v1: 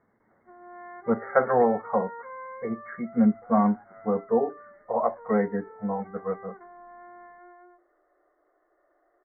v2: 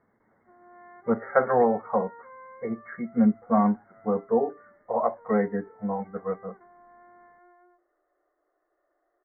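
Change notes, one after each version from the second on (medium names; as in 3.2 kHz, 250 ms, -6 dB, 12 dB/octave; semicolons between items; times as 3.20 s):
background -6.5 dB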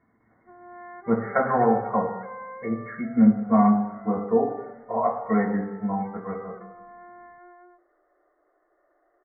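background +7.5 dB; reverb: on, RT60 1.1 s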